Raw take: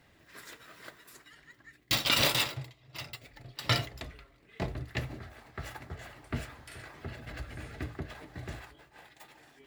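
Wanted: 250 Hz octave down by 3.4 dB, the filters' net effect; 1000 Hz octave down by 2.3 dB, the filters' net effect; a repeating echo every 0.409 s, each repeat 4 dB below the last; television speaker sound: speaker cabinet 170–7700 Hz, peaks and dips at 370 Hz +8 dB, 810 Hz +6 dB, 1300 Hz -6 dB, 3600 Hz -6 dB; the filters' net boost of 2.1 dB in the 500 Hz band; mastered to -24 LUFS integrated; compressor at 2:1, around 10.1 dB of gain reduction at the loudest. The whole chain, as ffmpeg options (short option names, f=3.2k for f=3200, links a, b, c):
-af "equalizer=f=250:t=o:g=-8.5,equalizer=f=500:t=o:g=3,equalizer=f=1k:t=o:g=-5,acompressor=threshold=-42dB:ratio=2,highpass=f=170:w=0.5412,highpass=f=170:w=1.3066,equalizer=f=370:t=q:w=4:g=8,equalizer=f=810:t=q:w=4:g=6,equalizer=f=1.3k:t=q:w=4:g=-6,equalizer=f=3.6k:t=q:w=4:g=-6,lowpass=f=7.7k:w=0.5412,lowpass=f=7.7k:w=1.3066,aecho=1:1:409|818|1227|1636|2045|2454|2863|3272|3681:0.631|0.398|0.25|0.158|0.0994|0.0626|0.0394|0.0249|0.0157,volume=20dB"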